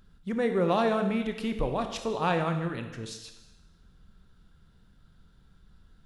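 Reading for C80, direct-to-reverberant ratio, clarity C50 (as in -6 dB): 10.0 dB, 6.0 dB, 8.0 dB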